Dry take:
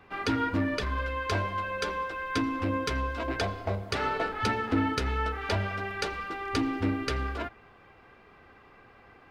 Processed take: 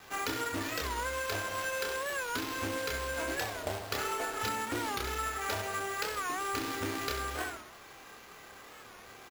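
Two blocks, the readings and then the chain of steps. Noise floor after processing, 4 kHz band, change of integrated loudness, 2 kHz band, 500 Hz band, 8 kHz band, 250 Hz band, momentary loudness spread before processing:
−52 dBFS, −0.5 dB, −4.0 dB, −2.0 dB, −3.5 dB, +7.5 dB, −10.0 dB, 5 LU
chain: on a send: flutter between parallel walls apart 11.4 metres, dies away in 0.53 s
on the sum: log-companded quantiser 4 bits
double-tracking delay 28 ms −2.5 dB
decimation without filtering 5×
low-shelf EQ 280 Hz −8 dB
downward compressor, threshold −31 dBFS, peak gain reduction 9 dB
wow of a warped record 45 rpm, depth 160 cents

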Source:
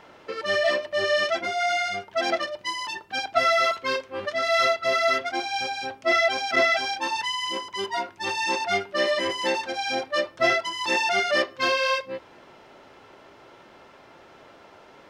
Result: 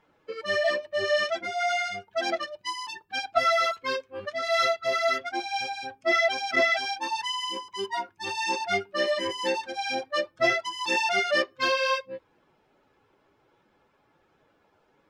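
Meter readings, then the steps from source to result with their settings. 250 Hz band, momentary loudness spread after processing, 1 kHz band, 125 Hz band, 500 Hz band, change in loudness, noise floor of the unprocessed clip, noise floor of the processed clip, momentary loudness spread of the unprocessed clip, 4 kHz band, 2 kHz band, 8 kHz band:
−3.0 dB, 10 LU, −2.5 dB, −3.5 dB, −2.5 dB, −2.5 dB, −51 dBFS, −68 dBFS, 9 LU, −3.0 dB, −2.5 dB, −2.5 dB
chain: spectral dynamics exaggerated over time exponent 1.5

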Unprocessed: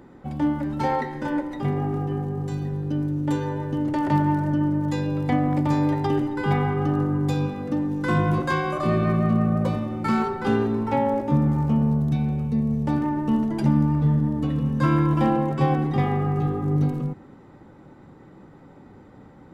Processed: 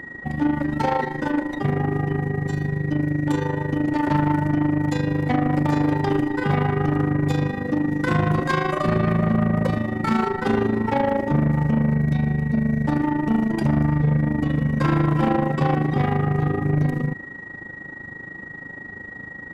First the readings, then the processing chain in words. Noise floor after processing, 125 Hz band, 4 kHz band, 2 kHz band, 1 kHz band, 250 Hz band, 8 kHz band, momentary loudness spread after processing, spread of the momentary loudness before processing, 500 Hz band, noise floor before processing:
−38 dBFS, +1.5 dB, +3.0 dB, +6.0 dB, +1.5 dB, +1.5 dB, can't be measured, 15 LU, 6 LU, +2.0 dB, −48 dBFS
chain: steady tone 1,900 Hz −39 dBFS
amplitude modulation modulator 26 Hz, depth 60%
soft clipping −21 dBFS, distortion −13 dB
level +7.5 dB

